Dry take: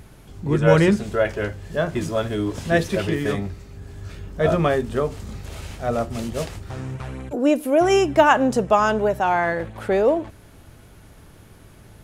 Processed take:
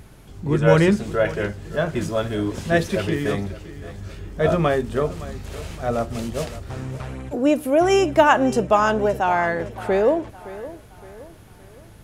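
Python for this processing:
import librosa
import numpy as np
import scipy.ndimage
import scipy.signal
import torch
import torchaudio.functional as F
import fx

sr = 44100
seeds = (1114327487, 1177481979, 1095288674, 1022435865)

y = fx.echo_feedback(x, sr, ms=566, feedback_pct=42, wet_db=-16.5)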